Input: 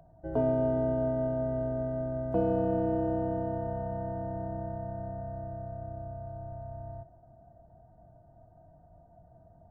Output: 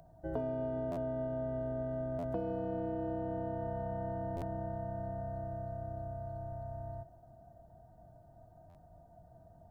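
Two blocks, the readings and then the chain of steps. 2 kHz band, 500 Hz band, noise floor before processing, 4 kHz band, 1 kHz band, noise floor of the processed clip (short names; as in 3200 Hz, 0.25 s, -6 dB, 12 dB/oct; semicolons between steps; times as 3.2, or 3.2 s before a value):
-3.5 dB, -6.5 dB, -58 dBFS, n/a, -4.5 dB, -60 dBFS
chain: high shelf 2400 Hz +9 dB; compressor 6:1, threshold -32 dBFS, peak gain reduction 9.5 dB; stuck buffer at 0.91/2.18/4.36/8.69, samples 512, times 4; gain -1.5 dB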